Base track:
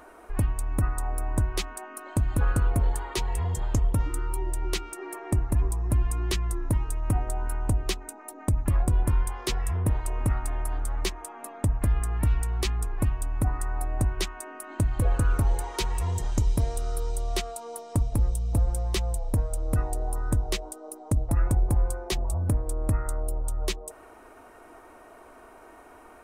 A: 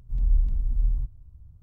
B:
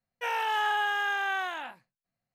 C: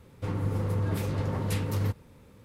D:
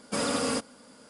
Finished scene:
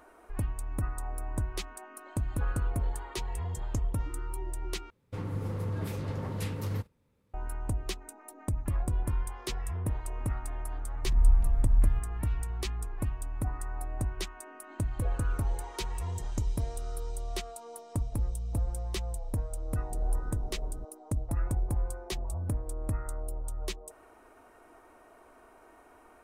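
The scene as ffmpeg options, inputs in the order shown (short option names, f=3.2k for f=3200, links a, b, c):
-filter_complex "[1:a]asplit=2[a][b];[0:a]volume=-7dB[c];[3:a]agate=range=-13dB:threshold=-44dB:ratio=16:release=100:detection=peak[d];[b]acrusher=bits=4:mix=0:aa=0.5[e];[c]asplit=2[f][g];[f]atrim=end=4.904[h];[d]atrim=end=2.44,asetpts=PTS-STARTPTS,volume=-5dB[i];[g]atrim=start=7.336[j];[a]atrim=end=1.62,asetpts=PTS-STARTPTS,afade=t=in:d=0.004:c=hsin,afade=t=out:st=1.616:d=0.004:c=hsin,adelay=10940[k];[e]atrim=end=1.62,asetpts=PTS-STARTPTS,volume=-12dB,afade=t=in:d=0.004:c=hsin,afade=t=out:st=1.616:d=0.004:c=hsin,adelay=19790[l];[h][i]acrossfade=d=0.004:c1=hsin:c2=hsin[m];[m][j]acrossfade=d=0.004:c1=hsin:c2=hsin[n];[n][k][l]amix=inputs=3:normalize=0"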